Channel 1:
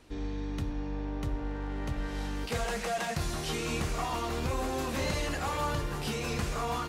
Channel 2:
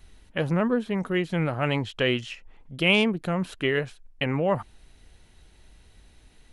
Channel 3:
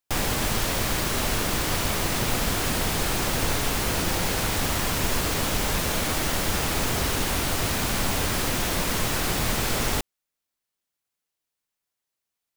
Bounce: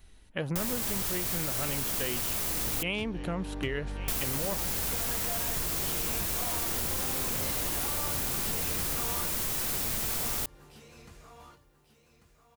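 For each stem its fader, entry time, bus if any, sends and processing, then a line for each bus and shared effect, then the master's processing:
−2.0 dB, 2.40 s, no send, echo send −6.5 dB, no processing
−4.0 dB, 0.00 s, no send, echo send −22.5 dB, no processing
−6.0 dB, 0.45 s, muted 0:02.83–0:04.08, no send, no echo send, high-shelf EQ 5,900 Hz +9 dB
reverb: not used
echo: repeating echo 1,142 ms, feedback 27%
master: high-shelf EQ 8,900 Hz +6 dB; downward compressor, threshold −28 dBFS, peak gain reduction 9 dB

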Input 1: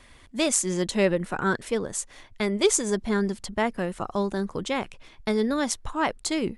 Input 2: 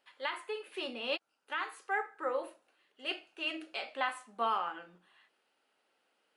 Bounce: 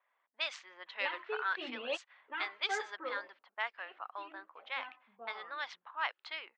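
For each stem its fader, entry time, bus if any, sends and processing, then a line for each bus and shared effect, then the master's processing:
−3.5 dB, 0.00 s, no send, Bessel high-pass filter 1,400 Hz, order 4
0:02.87 −0.5 dB → 0:03.51 −12.5 dB, 0.80 s, no send, through-zero flanger with one copy inverted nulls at 0.4 Hz, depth 6.3 ms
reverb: not used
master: low-pass filter 3,900 Hz 24 dB per octave; low-pass that shuts in the quiet parts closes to 580 Hz, open at −31.5 dBFS

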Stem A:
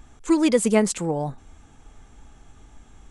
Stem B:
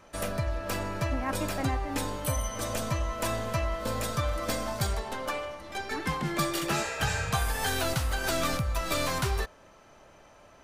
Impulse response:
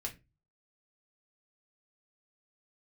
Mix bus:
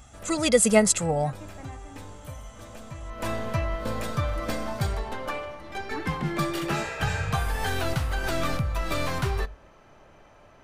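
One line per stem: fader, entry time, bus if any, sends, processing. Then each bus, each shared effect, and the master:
−1.0 dB, 0.00 s, no send, high-pass filter 61 Hz; high-shelf EQ 3,800 Hz +7 dB; comb filter 1.5 ms
0:02.98 −13 dB → 0:03.28 −0.5 dB, 0.00 s, send −11.5 dB, bass and treble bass +3 dB, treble −7 dB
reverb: on, RT60 0.25 s, pre-delay 3 ms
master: no processing

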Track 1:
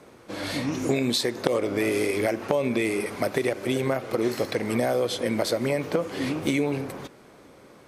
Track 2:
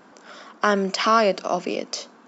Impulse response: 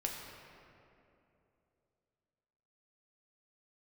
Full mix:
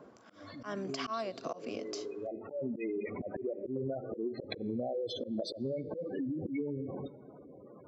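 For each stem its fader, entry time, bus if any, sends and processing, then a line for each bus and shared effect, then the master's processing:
−1.5 dB, 0.00 s, send −22.5 dB, gate on every frequency bin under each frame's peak −10 dB strong; automatic ducking −18 dB, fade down 0.25 s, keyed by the second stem
−14.0 dB, 0.00 s, no send, low-shelf EQ 250 Hz −5.5 dB; hollow resonant body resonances 240/680/1,100 Hz, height 8 dB, ringing for 45 ms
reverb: on, RT60 2.9 s, pre-delay 5 ms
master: volume swells 153 ms; downward compressor 6 to 1, threshold −33 dBFS, peak gain reduction 10.5 dB

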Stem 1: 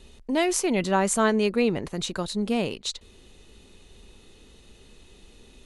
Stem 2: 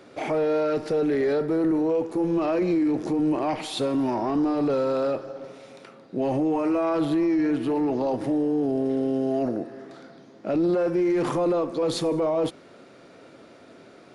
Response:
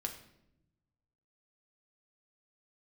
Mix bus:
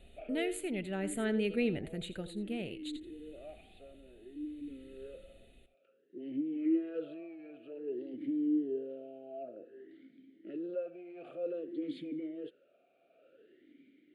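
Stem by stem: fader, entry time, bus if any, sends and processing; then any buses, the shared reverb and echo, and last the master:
−7.0 dB, 0.00 s, no send, echo send −14.5 dB, parametric band 5,200 Hz −14 dB 0.32 octaves
−2.0 dB, 0.00 s, no send, no echo send, formant filter swept between two vowels a-i 0.54 Hz; automatic ducking −9 dB, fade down 0.55 s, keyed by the first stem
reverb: not used
echo: single-tap delay 83 ms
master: phaser with its sweep stopped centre 2,500 Hz, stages 4; amplitude tremolo 0.59 Hz, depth 41%

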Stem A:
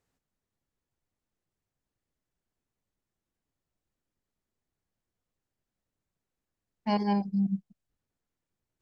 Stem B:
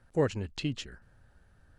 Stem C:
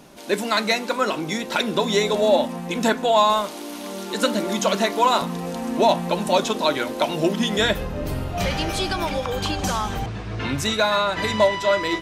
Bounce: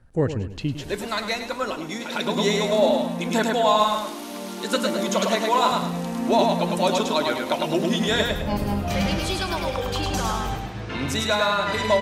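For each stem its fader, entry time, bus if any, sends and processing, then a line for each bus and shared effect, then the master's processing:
−0.5 dB, 1.60 s, no send, no echo send, no processing
+0.5 dB, 0.00 s, no send, echo send −11 dB, low-shelf EQ 400 Hz +7.5 dB
−3.0 dB, 0.50 s, no send, echo send −3 dB, automatic ducking −23 dB, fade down 1.00 s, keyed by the second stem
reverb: not used
echo: repeating echo 104 ms, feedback 34%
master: no processing

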